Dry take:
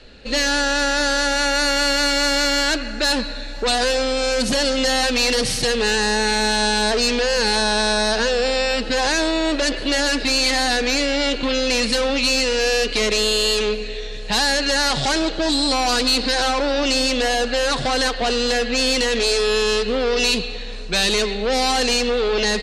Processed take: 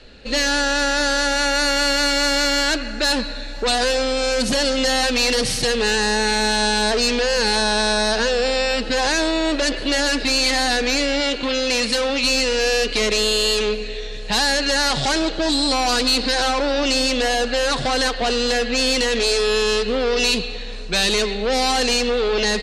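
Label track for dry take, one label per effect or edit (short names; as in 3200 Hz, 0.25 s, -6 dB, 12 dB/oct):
11.200000	12.240000	low shelf 180 Hz -6.5 dB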